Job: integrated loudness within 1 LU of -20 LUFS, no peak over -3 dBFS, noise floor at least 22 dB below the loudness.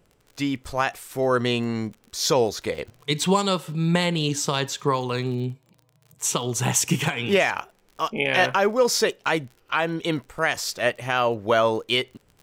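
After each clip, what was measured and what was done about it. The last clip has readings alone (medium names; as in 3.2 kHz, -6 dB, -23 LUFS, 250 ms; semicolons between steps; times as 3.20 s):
tick rate 44 per s; loudness -23.5 LUFS; peak level -7.5 dBFS; loudness target -20.0 LUFS
-> de-click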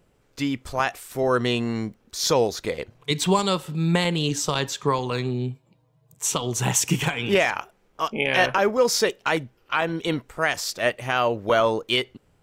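tick rate 0.40 per s; loudness -24.0 LUFS; peak level -7.5 dBFS; loudness target -20.0 LUFS
-> trim +4 dB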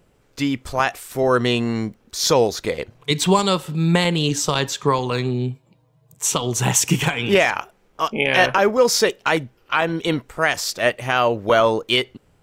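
loudness -20.0 LUFS; peak level -3.5 dBFS; noise floor -60 dBFS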